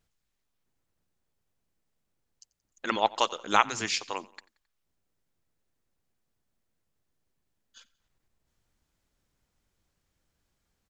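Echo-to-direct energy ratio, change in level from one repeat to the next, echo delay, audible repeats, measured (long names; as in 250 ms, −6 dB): −21.5 dB, −6.0 dB, 89 ms, 3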